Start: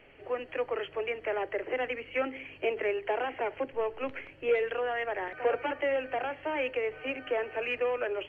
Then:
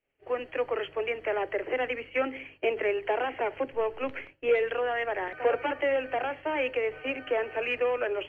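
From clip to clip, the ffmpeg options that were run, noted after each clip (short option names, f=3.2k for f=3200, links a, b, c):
-af "agate=range=-33dB:threshold=-40dB:ratio=3:detection=peak,volume=2.5dB"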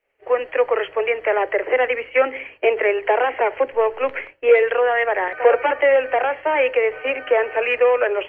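-af "equalizer=f=125:t=o:w=1:g=-5,equalizer=f=250:t=o:w=1:g=-4,equalizer=f=500:t=o:w=1:g=9,equalizer=f=1k:t=o:w=1:g=7,equalizer=f=2k:t=o:w=1:g=8,volume=2dB"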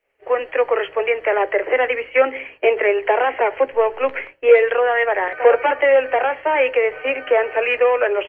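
-filter_complex "[0:a]asplit=2[a][b];[b]adelay=15,volume=-13dB[c];[a][c]amix=inputs=2:normalize=0,volume=1dB"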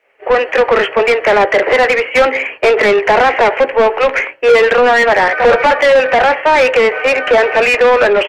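-filter_complex "[0:a]asplit=2[a][b];[b]highpass=f=720:p=1,volume=24dB,asoftclip=type=tanh:threshold=-1dB[c];[a][c]amix=inputs=2:normalize=0,lowpass=f=2.3k:p=1,volume=-6dB"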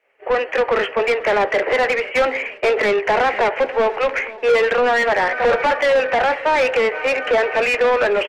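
-af "aecho=1:1:486|972|1458:0.112|0.0494|0.0217,volume=-7dB"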